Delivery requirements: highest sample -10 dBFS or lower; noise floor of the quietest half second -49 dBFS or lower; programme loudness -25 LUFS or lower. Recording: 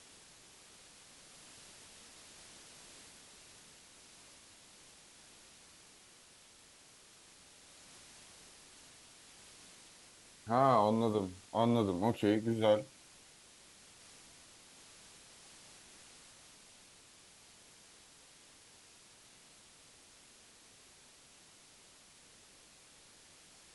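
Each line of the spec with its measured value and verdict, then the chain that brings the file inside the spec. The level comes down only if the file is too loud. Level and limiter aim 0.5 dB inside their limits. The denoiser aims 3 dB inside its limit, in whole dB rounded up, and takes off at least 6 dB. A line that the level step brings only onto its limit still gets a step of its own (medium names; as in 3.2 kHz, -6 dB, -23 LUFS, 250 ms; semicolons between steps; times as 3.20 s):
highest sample -15.0 dBFS: pass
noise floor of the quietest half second -61 dBFS: pass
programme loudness -31.5 LUFS: pass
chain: none needed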